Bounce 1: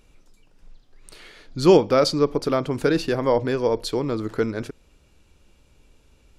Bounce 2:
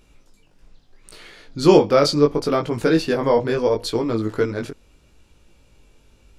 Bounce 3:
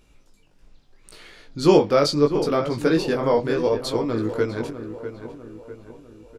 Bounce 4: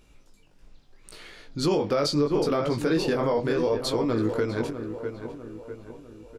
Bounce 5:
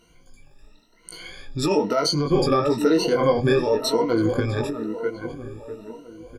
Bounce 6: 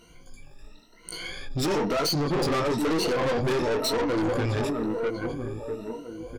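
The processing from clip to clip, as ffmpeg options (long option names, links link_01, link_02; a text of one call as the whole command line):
ffmpeg -i in.wav -af "flanger=delay=17.5:depth=3.7:speed=0.74,volume=5.5dB" out.wav
ffmpeg -i in.wav -filter_complex "[0:a]asplit=2[link_01][link_02];[link_02]adelay=649,lowpass=frequency=2100:poles=1,volume=-10.5dB,asplit=2[link_03][link_04];[link_04]adelay=649,lowpass=frequency=2100:poles=1,volume=0.49,asplit=2[link_05][link_06];[link_06]adelay=649,lowpass=frequency=2100:poles=1,volume=0.49,asplit=2[link_07][link_08];[link_08]adelay=649,lowpass=frequency=2100:poles=1,volume=0.49,asplit=2[link_09][link_10];[link_10]adelay=649,lowpass=frequency=2100:poles=1,volume=0.49[link_11];[link_01][link_03][link_05][link_07][link_09][link_11]amix=inputs=6:normalize=0,volume=-2.5dB" out.wav
ffmpeg -i in.wav -af "alimiter=limit=-15.5dB:level=0:latency=1:release=74" out.wav
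ffmpeg -i in.wav -af "afftfilt=real='re*pow(10,22/40*sin(2*PI*(1.9*log(max(b,1)*sr/1024/100)/log(2)-(0.99)*(pts-256)/sr)))':imag='im*pow(10,22/40*sin(2*PI*(1.9*log(max(b,1)*sr/1024/100)/log(2)-(0.99)*(pts-256)/sr)))':win_size=1024:overlap=0.75" out.wav
ffmpeg -i in.wav -af "aeval=exprs='(tanh(22.4*val(0)+0.2)-tanh(0.2))/22.4':channel_layout=same,volume=4dB" out.wav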